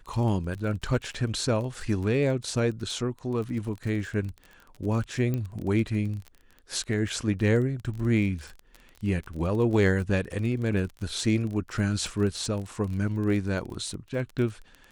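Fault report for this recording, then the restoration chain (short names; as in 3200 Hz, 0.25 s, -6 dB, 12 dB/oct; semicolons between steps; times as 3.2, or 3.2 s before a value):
crackle 24/s -33 dBFS
5.34 pop -18 dBFS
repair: de-click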